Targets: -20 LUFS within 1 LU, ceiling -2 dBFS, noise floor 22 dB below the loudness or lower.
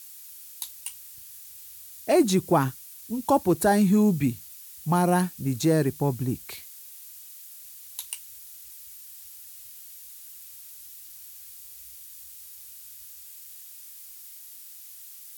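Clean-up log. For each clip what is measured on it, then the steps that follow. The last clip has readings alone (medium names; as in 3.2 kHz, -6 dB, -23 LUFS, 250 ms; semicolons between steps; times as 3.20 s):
noise floor -45 dBFS; noise floor target -47 dBFS; loudness -25.0 LUFS; peak level -9.5 dBFS; loudness target -20.0 LUFS
-> noise reduction 6 dB, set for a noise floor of -45 dBFS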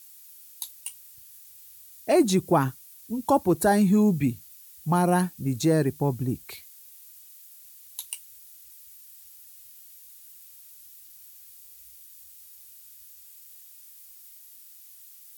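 noise floor -50 dBFS; loudness -25.0 LUFS; peak level -9.5 dBFS; loudness target -20.0 LUFS
-> trim +5 dB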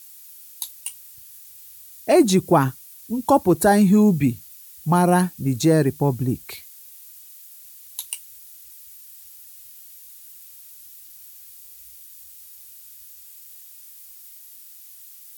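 loudness -20.0 LUFS; peak level -4.5 dBFS; noise floor -45 dBFS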